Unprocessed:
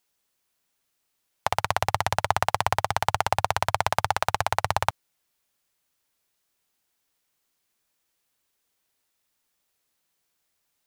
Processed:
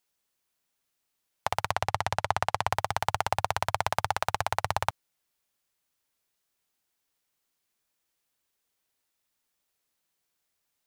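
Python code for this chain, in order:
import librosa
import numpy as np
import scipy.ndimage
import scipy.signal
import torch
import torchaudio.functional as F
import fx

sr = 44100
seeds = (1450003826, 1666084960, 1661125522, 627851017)

y = fx.high_shelf(x, sr, hz=12000.0, db=-11.5, at=(1.71, 2.72))
y = y * librosa.db_to_amplitude(-4.0)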